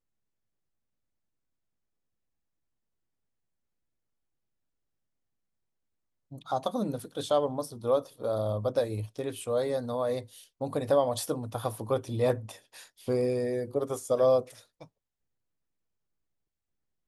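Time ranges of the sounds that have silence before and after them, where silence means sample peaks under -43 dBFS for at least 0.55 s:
6.32–14.85

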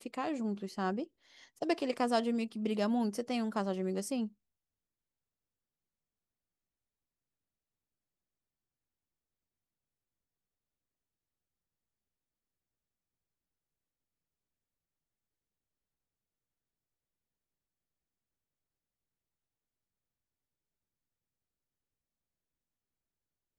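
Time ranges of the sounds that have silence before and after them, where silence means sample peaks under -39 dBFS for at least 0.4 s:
1.62–4.27

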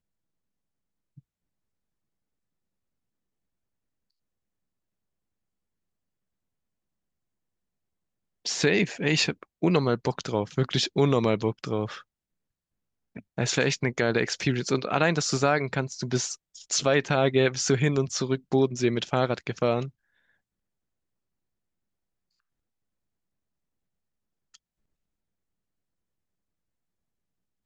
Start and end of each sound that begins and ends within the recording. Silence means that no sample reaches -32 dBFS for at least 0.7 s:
8.46–11.98
13.16–19.86

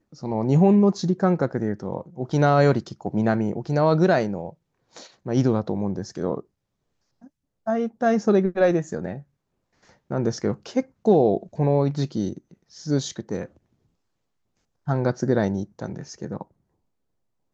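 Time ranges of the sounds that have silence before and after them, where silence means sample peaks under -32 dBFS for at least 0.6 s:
7.67–9.19
10.11–13.45
14.88–16.42

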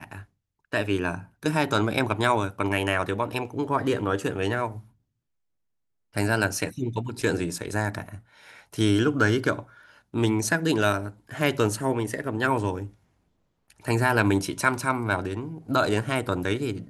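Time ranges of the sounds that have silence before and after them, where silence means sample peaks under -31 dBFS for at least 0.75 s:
6.16–12.85

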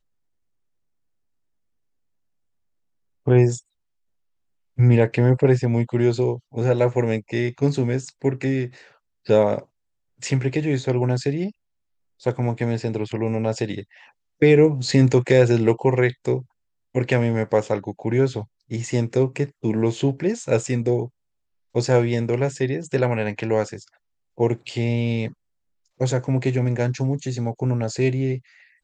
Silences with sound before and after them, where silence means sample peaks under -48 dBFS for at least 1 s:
3.6–4.78

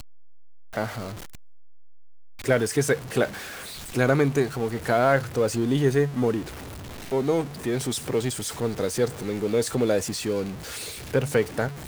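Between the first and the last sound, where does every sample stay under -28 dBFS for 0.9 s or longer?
1.1–2.46

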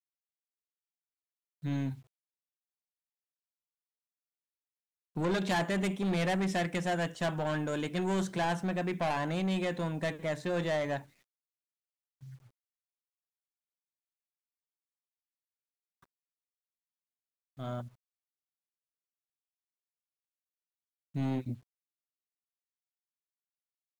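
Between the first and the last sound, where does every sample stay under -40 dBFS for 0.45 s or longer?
1.94–5.16
11–17.59
17.87–21.15

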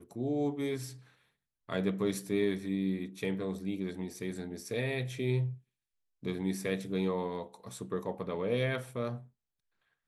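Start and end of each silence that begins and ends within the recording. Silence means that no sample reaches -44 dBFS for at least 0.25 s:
0.96–1.69
5.55–6.23

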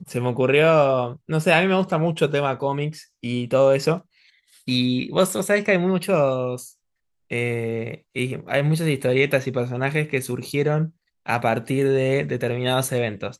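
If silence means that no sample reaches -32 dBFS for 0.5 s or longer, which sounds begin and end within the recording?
4.68–6.67

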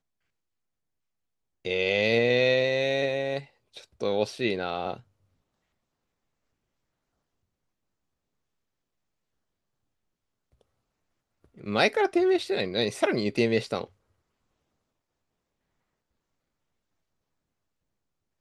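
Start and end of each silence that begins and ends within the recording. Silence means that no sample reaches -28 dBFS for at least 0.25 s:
3.38–4.02
4.94–11.67

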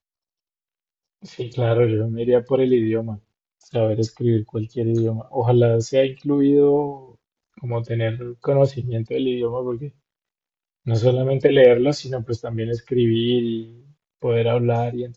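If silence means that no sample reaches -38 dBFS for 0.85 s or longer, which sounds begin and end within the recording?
1.24–9.89

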